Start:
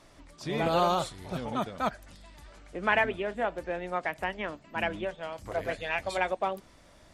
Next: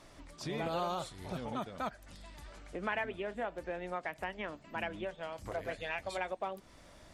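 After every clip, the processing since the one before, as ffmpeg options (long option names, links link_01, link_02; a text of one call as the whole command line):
ffmpeg -i in.wav -af "acompressor=threshold=-40dB:ratio=2" out.wav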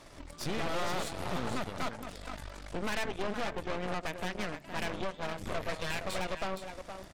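ffmpeg -i in.wav -af "asoftclip=type=tanh:threshold=-36dB,aecho=1:1:467:0.398,aeval=exprs='0.0224*(cos(1*acos(clip(val(0)/0.0224,-1,1)))-cos(1*PI/2))+0.0112*(cos(4*acos(clip(val(0)/0.0224,-1,1)))-cos(4*PI/2))+0.00141*(cos(6*acos(clip(val(0)/0.0224,-1,1)))-cos(6*PI/2))':channel_layout=same,volume=4dB" out.wav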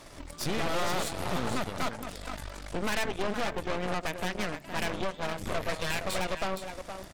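ffmpeg -i in.wav -af "crystalizer=i=0.5:c=0,volume=3.5dB" out.wav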